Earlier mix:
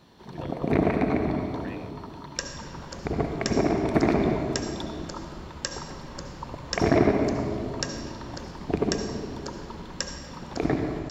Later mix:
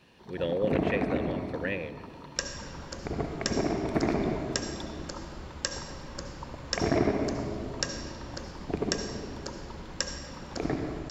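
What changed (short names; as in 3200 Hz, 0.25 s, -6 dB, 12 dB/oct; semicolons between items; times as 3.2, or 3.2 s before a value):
speech +11.0 dB; first sound -5.5 dB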